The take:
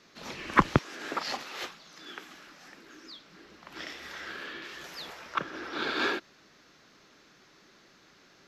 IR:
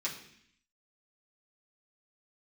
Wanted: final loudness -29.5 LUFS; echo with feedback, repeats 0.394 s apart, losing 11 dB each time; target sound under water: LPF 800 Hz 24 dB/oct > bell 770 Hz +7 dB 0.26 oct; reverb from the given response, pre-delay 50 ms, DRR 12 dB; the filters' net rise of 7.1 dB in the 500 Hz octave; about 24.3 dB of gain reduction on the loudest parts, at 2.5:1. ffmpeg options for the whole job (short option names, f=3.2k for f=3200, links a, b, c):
-filter_complex "[0:a]equalizer=f=500:t=o:g=9,acompressor=threshold=-52dB:ratio=2.5,aecho=1:1:394|788|1182:0.282|0.0789|0.0221,asplit=2[a][b];[1:a]atrim=start_sample=2205,adelay=50[c];[b][c]afir=irnorm=-1:irlink=0,volume=-15.5dB[d];[a][d]amix=inputs=2:normalize=0,lowpass=f=800:w=0.5412,lowpass=f=800:w=1.3066,equalizer=f=770:t=o:w=0.26:g=7,volume=23.5dB"